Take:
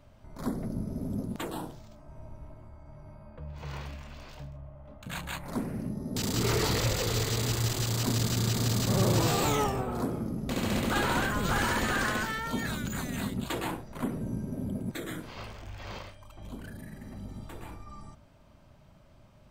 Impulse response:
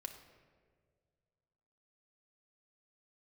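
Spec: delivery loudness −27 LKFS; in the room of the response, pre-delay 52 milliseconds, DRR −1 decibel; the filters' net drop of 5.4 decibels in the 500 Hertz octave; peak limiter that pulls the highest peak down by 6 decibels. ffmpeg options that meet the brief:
-filter_complex "[0:a]equalizer=frequency=500:width_type=o:gain=-7,alimiter=limit=-22dB:level=0:latency=1,asplit=2[link_01][link_02];[1:a]atrim=start_sample=2205,adelay=52[link_03];[link_02][link_03]afir=irnorm=-1:irlink=0,volume=4.5dB[link_04];[link_01][link_04]amix=inputs=2:normalize=0,volume=3.5dB"

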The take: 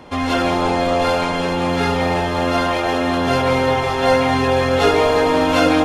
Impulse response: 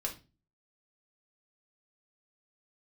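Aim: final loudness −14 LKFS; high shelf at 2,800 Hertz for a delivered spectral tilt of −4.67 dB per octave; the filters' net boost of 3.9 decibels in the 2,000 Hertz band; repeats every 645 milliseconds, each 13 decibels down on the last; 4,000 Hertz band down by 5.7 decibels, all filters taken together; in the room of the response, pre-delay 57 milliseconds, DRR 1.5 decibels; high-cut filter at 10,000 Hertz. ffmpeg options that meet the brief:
-filter_complex "[0:a]lowpass=10000,equalizer=frequency=2000:width_type=o:gain=8.5,highshelf=frequency=2800:gain=-5.5,equalizer=frequency=4000:width_type=o:gain=-7.5,aecho=1:1:645|1290|1935:0.224|0.0493|0.0108,asplit=2[link_01][link_02];[1:a]atrim=start_sample=2205,adelay=57[link_03];[link_02][link_03]afir=irnorm=-1:irlink=0,volume=-3.5dB[link_04];[link_01][link_04]amix=inputs=2:normalize=0"

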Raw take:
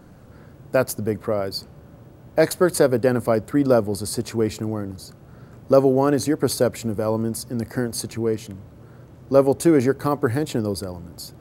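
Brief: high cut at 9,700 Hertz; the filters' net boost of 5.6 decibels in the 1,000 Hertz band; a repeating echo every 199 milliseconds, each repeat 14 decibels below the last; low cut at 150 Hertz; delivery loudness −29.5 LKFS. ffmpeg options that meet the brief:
ffmpeg -i in.wav -af "highpass=150,lowpass=9700,equalizer=frequency=1000:width_type=o:gain=7.5,aecho=1:1:199|398:0.2|0.0399,volume=-9dB" out.wav

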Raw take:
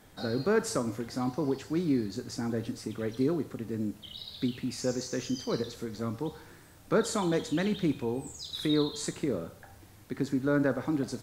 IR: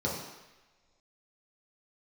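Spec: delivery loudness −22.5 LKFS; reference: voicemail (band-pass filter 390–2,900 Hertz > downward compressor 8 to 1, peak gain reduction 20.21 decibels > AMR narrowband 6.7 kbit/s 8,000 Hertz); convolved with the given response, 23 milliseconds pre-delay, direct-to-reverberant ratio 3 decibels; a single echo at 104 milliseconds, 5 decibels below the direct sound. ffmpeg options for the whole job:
-filter_complex "[0:a]aecho=1:1:104:0.562,asplit=2[link_01][link_02];[1:a]atrim=start_sample=2205,adelay=23[link_03];[link_02][link_03]afir=irnorm=-1:irlink=0,volume=-11dB[link_04];[link_01][link_04]amix=inputs=2:normalize=0,highpass=390,lowpass=2900,acompressor=threshold=-41dB:ratio=8,volume=23dB" -ar 8000 -c:a libopencore_amrnb -b:a 6700

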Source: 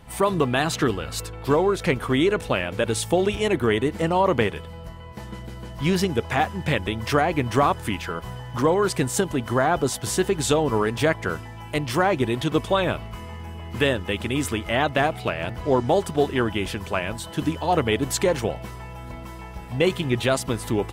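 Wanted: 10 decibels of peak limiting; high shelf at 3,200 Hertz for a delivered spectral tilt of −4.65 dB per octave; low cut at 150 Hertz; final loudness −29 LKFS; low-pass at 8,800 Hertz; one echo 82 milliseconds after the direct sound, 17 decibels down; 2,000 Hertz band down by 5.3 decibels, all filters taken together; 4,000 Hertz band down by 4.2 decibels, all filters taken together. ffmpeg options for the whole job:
ffmpeg -i in.wav -af "highpass=150,lowpass=8800,equalizer=frequency=2000:width_type=o:gain=-7,highshelf=frequency=3200:gain=4.5,equalizer=frequency=4000:width_type=o:gain=-6,alimiter=limit=-16.5dB:level=0:latency=1,aecho=1:1:82:0.141,volume=-0.5dB" out.wav

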